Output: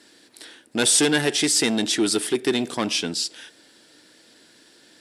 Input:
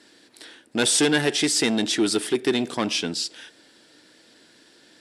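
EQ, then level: high shelf 8500 Hz +7.5 dB; 0.0 dB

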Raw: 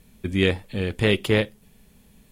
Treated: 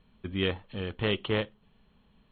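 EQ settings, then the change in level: rippled Chebyshev low-pass 4300 Hz, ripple 9 dB; air absorption 360 m; high shelf 3200 Hz +9.5 dB; 0.0 dB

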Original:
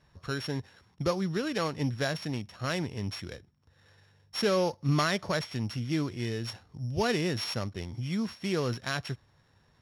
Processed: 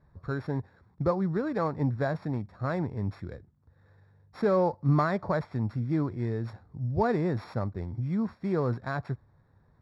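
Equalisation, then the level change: low shelf 180 Hz +5 dB; dynamic EQ 870 Hz, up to +6 dB, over -45 dBFS, Q 1.3; running mean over 15 samples; 0.0 dB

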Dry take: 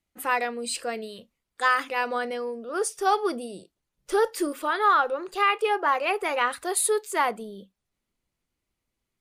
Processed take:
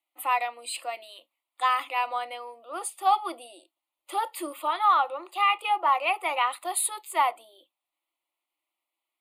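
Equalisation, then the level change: elliptic high-pass 320 Hz, stop band 40 dB; fixed phaser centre 1600 Hz, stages 6; +2.5 dB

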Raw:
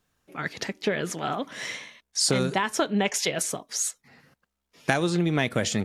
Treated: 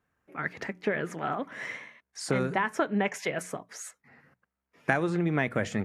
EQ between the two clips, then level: HPF 40 Hz; resonant high shelf 2700 Hz -10.5 dB, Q 1.5; notches 60/120/180 Hz; -3.0 dB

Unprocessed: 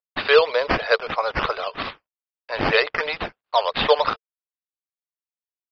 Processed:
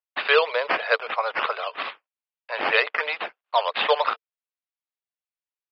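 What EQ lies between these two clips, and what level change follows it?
HPF 560 Hz 12 dB/oct; air absorption 210 m; bell 2700 Hz +4 dB 0.88 oct; 0.0 dB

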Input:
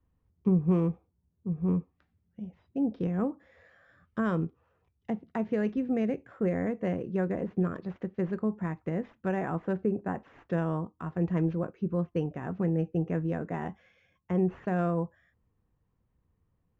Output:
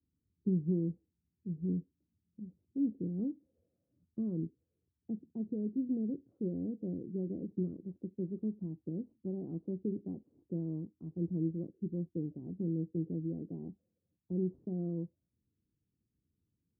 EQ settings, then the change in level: HPF 75 Hz; ladder low-pass 380 Hz, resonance 45%; air absorption 450 m; 0.0 dB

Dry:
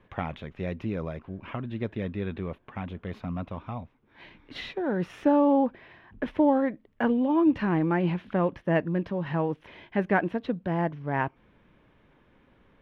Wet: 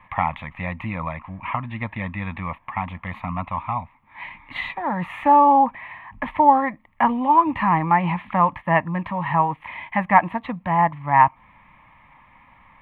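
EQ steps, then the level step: band shelf 1400 Hz +14 dB; dynamic EQ 2300 Hz, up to -5 dB, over -35 dBFS, Q 1.5; fixed phaser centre 1500 Hz, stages 6; +5.5 dB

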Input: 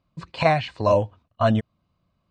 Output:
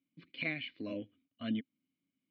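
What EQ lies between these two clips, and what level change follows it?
vowel filter i; HPF 170 Hz 6 dB/oct; LPF 4700 Hz 24 dB/oct; +1.0 dB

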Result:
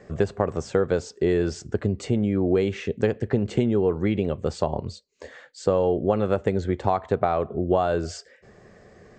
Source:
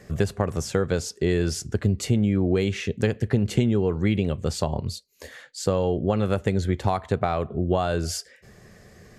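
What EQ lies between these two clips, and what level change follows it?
brick-wall FIR low-pass 8500 Hz; tone controls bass -9 dB, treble -12 dB; bell 2400 Hz -6.5 dB 2.2 oct; +4.5 dB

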